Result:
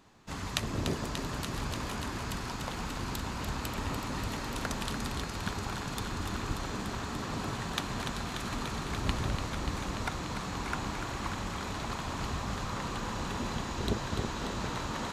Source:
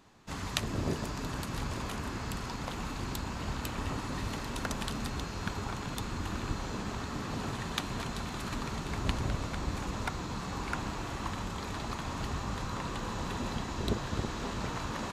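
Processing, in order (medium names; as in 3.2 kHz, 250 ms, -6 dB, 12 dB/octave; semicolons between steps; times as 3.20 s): thinning echo 292 ms, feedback 82%, high-pass 420 Hz, level -7 dB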